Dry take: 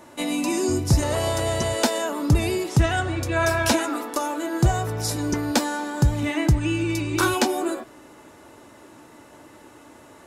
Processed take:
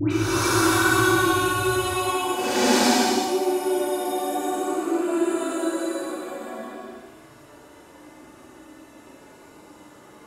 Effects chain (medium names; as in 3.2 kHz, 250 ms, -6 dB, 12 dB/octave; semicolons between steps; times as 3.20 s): Paulstretch 10×, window 0.10 s, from 7.15 s; phase dispersion highs, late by 107 ms, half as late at 1.5 kHz